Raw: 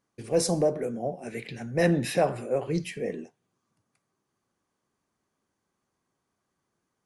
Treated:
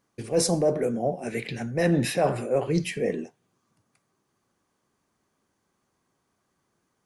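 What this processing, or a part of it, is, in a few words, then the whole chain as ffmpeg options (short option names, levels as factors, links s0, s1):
compression on the reversed sound: -af "areverse,acompressor=threshold=0.0631:ratio=6,areverse,volume=1.88"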